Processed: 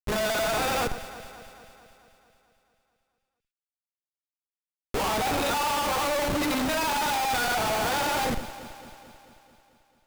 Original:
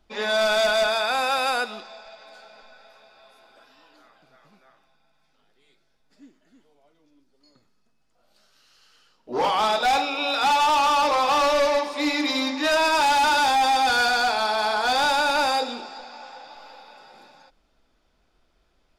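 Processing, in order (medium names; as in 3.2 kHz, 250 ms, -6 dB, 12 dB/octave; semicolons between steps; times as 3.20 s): granular stretch 0.53×, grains 92 ms; Schmitt trigger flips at -28 dBFS; echo whose repeats swap between lows and highs 110 ms, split 2 kHz, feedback 79%, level -12 dB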